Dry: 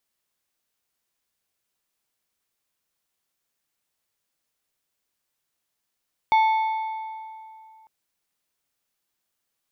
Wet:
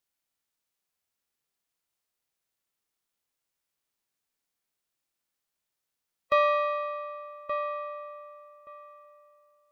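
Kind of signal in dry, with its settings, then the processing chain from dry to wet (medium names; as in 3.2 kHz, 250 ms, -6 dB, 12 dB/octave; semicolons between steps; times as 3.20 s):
metal hit plate, lowest mode 881 Hz, decay 2.54 s, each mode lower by 10.5 dB, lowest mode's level -14 dB
ring modulator 290 Hz; filtered feedback delay 1175 ms, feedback 17%, low-pass 1.7 kHz, level -7 dB; harmonic-percussive split percussive -6 dB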